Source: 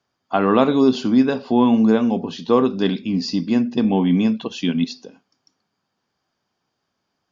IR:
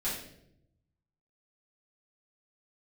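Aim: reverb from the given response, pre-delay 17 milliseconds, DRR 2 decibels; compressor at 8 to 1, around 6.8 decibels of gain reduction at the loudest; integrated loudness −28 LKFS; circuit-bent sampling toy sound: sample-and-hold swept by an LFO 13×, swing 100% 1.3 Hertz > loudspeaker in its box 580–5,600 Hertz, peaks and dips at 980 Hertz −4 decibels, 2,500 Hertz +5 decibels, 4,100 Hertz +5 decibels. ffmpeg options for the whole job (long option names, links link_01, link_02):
-filter_complex "[0:a]acompressor=threshold=-17dB:ratio=8,asplit=2[link_01][link_02];[1:a]atrim=start_sample=2205,adelay=17[link_03];[link_02][link_03]afir=irnorm=-1:irlink=0,volume=-7dB[link_04];[link_01][link_04]amix=inputs=2:normalize=0,acrusher=samples=13:mix=1:aa=0.000001:lfo=1:lforange=13:lforate=1.3,highpass=580,equalizer=frequency=980:width_type=q:width=4:gain=-4,equalizer=frequency=2500:width_type=q:width=4:gain=5,equalizer=frequency=4100:width_type=q:width=4:gain=5,lowpass=frequency=5600:width=0.5412,lowpass=frequency=5600:width=1.3066,volume=-0.5dB"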